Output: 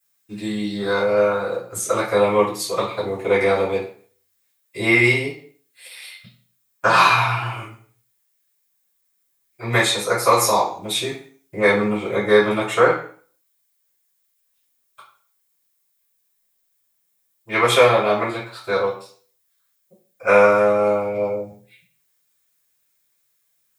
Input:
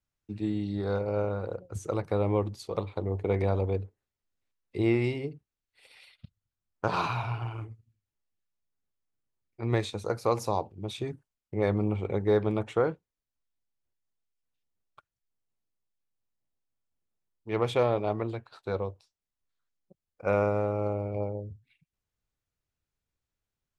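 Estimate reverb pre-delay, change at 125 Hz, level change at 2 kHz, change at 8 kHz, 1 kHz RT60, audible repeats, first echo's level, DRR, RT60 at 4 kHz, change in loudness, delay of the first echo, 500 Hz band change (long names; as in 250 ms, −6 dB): 3 ms, +1.5 dB, +20.5 dB, +22.0 dB, 0.45 s, no echo audible, no echo audible, −12.5 dB, 0.45 s, +11.5 dB, no echo audible, +11.0 dB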